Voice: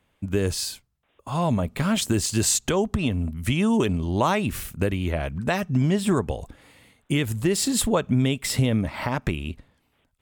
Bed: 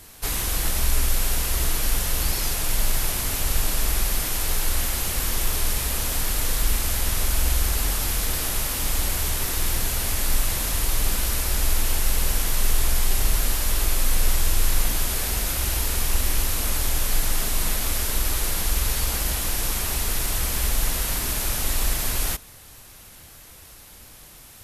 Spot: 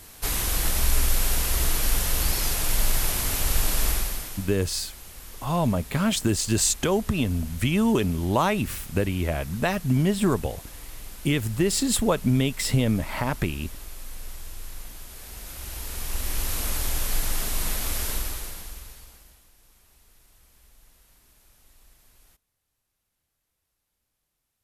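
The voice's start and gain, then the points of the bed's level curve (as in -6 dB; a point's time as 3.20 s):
4.15 s, -0.5 dB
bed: 3.89 s -0.5 dB
4.58 s -18 dB
15.08 s -18 dB
16.54 s -3.5 dB
18.11 s -3.5 dB
19.51 s -33.5 dB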